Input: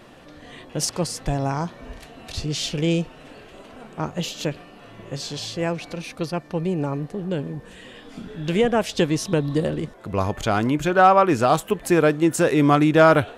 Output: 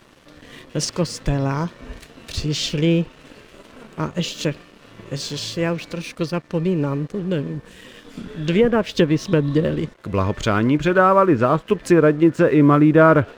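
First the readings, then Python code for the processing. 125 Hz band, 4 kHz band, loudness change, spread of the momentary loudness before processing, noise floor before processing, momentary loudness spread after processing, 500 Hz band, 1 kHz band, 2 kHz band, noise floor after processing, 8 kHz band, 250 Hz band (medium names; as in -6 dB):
+4.0 dB, +2.0 dB, +2.5 dB, 18 LU, -46 dBFS, 16 LU, +2.5 dB, -1.0 dB, +1.5 dB, -48 dBFS, -1.5 dB, +4.0 dB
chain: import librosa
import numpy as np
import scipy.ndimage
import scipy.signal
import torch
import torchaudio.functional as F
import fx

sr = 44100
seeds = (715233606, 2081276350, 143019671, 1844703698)

y = fx.env_lowpass_down(x, sr, base_hz=1500.0, full_db=-14.0)
y = fx.peak_eq(y, sr, hz=760.0, db=-13.0, octaves=0.32)
y = np.sign(y) * np.maximum(np.abs(y) - 10.0 ** (-49.0 / 20.0), 0.0)
y = F.gain(torch.from_numpy(y), 4.5).numpy()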